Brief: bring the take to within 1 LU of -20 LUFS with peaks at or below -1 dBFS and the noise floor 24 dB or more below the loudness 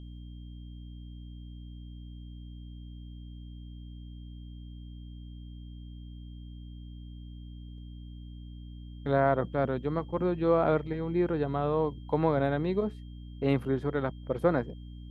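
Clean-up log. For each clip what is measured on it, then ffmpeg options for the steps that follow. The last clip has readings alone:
hum 60 Hz; harmonics up to 300 Hz; hum level -41 dBFS; steady tone 3200 Hz; tone level -62 dBFS; loudness -29.5 LUFS; peak -12.0 dBFS; loudness target -20.0 LUFS
-> -af "bandreject=f=60:t=h:w=6,bandreject=f=120:t=h:w=6,bandreject=f=180:t=h:w=6,bandreject=f=240:t=h:w=6,bandreject=f=300:t=h:w=6"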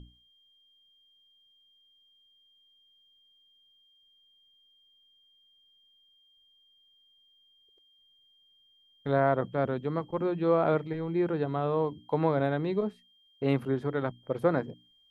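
hum none; steady tone 3200 Hz; tone level -62 dBFS
-> -af "bandreject=f=3.2k:w=30"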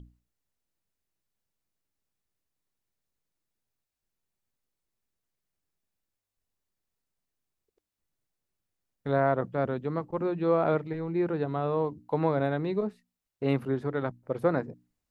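steady tone none; loudness -29.5 LUFS; peak -12.5 dBFS; loudness target -20.0 LUFS
-> -af "volume=9.5dB"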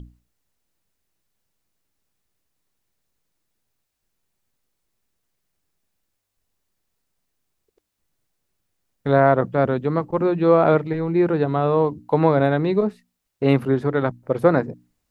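loudness -20.0 LUFS; peak -3.0 dBFS; noise floor -78 dBFS

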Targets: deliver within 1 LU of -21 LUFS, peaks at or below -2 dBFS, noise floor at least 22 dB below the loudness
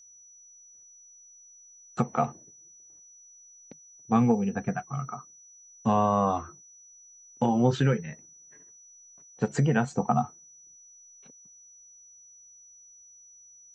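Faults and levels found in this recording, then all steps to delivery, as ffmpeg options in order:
steady tone 5900 Hz; tone level -51 dBFS; loudness -27.0 LUFS; peak -10.0 dBFS; loudness target -21.0 LUFS
-> -af "bandreject=f=5.9k:w=30"
-af "volume=6dB"

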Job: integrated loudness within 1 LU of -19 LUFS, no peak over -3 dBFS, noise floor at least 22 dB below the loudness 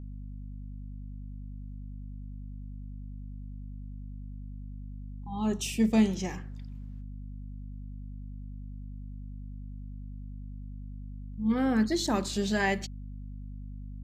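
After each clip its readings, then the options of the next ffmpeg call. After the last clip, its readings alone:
hum 50 Hz; harmonics up to 250 Hz; hum level -38 dBFS; loudness -34.5 LUFS; peak -14.0 dBFS; loudness target -19.0 LUFS
-> -af "bandreject=f=50:t=h:w=4,bandreject=f=100:t=h:w=4,bandreject=f=150:t=h:w=4,bandreject=f=200:t=h:w=4,bandreject=f=250:t=h:w=4"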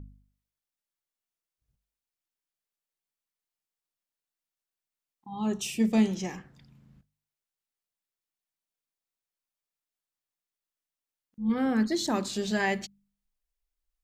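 hum none; loudness -28.5 LUFS; peak -14.5 dBFS; loudness target -19.0 LUFS
-> -af "volume=9.5dB"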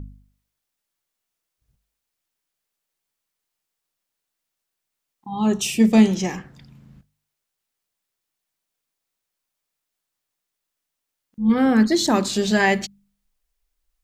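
loudness -19.0 LUFS; peak -5.0 dBFS; noise floor -82 dBFS

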